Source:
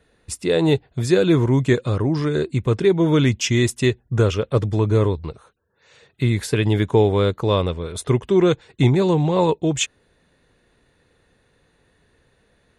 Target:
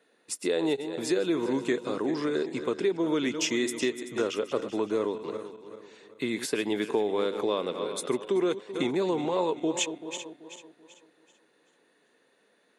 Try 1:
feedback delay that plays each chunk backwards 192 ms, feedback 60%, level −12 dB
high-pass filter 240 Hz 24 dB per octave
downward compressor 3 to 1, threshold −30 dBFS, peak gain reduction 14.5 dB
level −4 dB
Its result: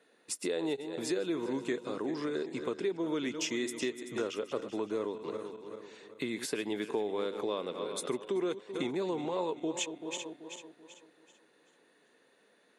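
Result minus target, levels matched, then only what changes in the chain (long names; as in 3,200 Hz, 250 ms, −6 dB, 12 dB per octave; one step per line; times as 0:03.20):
downward compressor: peak gain reduction +6.5 dB
change: downward compressor 3 to 1, threshold −20.5 dBFS, peak gain reduction 8 dB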